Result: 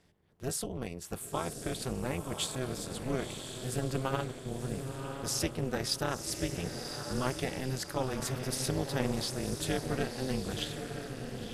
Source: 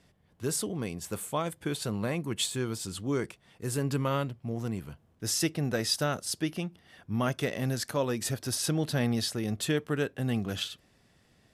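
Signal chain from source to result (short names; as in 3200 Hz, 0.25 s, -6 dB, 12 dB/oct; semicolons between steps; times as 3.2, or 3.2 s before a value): diffused feedback echo 1.034 s, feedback 40%, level -6 dB; AM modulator 260 Hz, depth 100%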